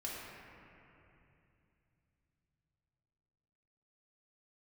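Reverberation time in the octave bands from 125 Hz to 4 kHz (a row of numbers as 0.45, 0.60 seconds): 5.1, 3.9, 3.0, 2.7, 2.7, 2.1 seconds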